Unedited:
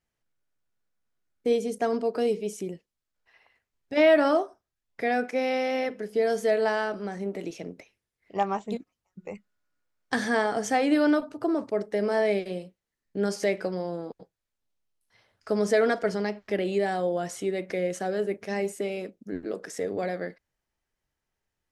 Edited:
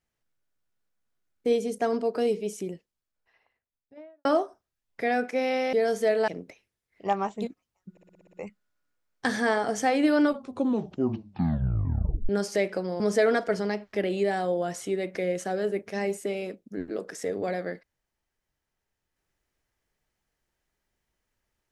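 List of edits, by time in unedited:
0:02.70–0:04.25: fade out and dull
0:05.73–0:06.15: remove
0:06.70–0:07.58: remove
0:09.21: stutter 0.06 s, 8 plays
0:11.09: tape stop 2.08 s
0:13.88–0:15.55: remove

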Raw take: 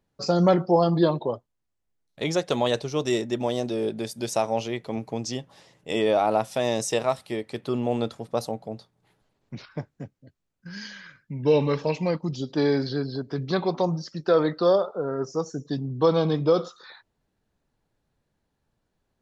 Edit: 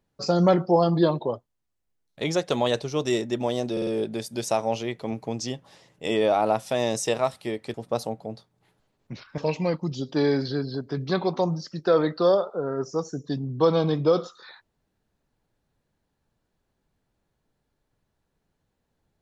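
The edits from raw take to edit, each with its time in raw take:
0:03.72: stutter 0.05 s, 4 plays
0:07.59–0:08.16: remove
0:09.80–0:11.79: remove

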